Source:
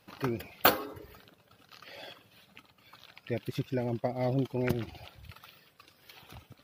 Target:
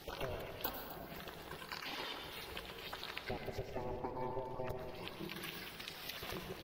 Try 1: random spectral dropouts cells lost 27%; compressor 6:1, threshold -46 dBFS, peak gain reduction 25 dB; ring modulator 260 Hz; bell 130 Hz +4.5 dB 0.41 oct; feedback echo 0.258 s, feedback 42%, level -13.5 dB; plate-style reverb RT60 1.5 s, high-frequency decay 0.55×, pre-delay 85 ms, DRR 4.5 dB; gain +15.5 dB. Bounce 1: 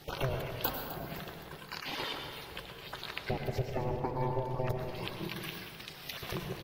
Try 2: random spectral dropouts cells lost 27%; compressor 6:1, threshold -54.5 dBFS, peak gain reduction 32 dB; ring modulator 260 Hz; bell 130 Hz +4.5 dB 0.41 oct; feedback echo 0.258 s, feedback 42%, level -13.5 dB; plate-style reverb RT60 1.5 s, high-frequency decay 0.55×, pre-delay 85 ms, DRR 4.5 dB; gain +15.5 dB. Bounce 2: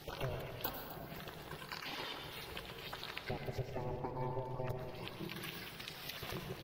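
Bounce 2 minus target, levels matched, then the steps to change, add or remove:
125 Hz band +5.0 dB
change: bell 130 Hz -5.5 dB 0.41 oct

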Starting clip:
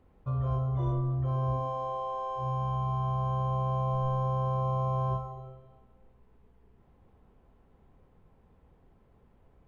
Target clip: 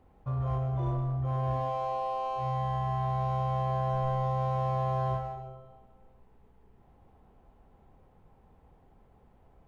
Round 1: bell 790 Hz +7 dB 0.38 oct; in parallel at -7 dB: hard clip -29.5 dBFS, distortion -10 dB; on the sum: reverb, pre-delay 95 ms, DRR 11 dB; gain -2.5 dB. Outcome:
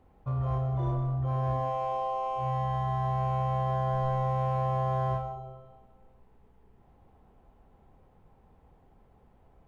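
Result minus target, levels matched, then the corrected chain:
hard clip: distortion -4 dB
bell 790 Hz +7 dB 0.38 oct; in parallel at -7 dB: hard clip -36 dBFS, distortion -6 dB; on the sum: reverb, pre-delay 95 ms, DRR 11 dB; gain -2.5 dB

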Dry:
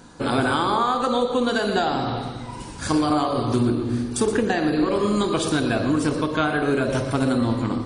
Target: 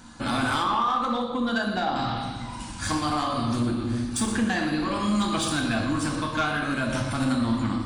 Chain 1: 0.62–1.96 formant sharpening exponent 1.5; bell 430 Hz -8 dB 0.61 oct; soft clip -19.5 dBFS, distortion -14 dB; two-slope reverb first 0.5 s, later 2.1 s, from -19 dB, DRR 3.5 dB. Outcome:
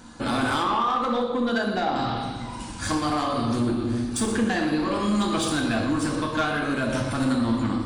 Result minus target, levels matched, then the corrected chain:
500 Hz band +3.0 dB
0.62–1.96 formant sharpening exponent 1.5; bell 430 Hz -18 dB 0.61 oct; soft clip -19.5 dBFS, distortion -16 dB; two-slope reverb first 0.5 s, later 2.1 s, from -19 dB, DRR 3.5 dB

